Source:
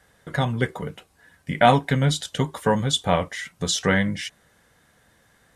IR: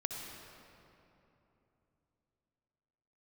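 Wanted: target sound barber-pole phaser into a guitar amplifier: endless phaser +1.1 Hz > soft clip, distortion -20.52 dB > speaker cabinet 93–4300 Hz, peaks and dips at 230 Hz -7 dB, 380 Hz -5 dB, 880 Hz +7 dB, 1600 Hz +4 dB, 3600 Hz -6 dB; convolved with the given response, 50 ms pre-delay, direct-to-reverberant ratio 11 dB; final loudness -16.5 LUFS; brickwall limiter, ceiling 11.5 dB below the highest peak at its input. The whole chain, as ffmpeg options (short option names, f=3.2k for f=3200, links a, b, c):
-filter_complex "[0:a]alimiter=limit=-13.5dB:level=0:latency=1,asplit=2[a][b];[1:a]atrim=start_sample=2205,adelay=50[c];[b][c]afir=irnorm=-1:irlink=0,volume=-12.5dB[d];[a][d]amix=inputs=2:normalize=0,asplit=2[e][f];[f]afreqshift=1.1[g];[e][g]amix=inputs=2:normalize=1,asoftclip=threshold=-17.5dB,highpass=93,equalizer=f=230:t=q:w=4:g=-7,equalizer=f=380:t=q:w=4:g=-5,equalizer=f=880:t=q:w=4:g=7,equalizer=f=1.6k:t=q:w=4:g=4,equalizer=f=3.6k:t=q:w=4:g=-6,lowpass=f=4.3k:w=0.5412,lowpass=f=4.3k:w=1.3066,volume=15dB"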